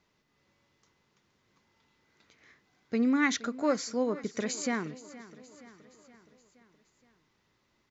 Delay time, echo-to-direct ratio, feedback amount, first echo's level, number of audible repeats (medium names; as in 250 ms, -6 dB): 471 ms, -16.5 dB, 57%, -18.0 dB, 4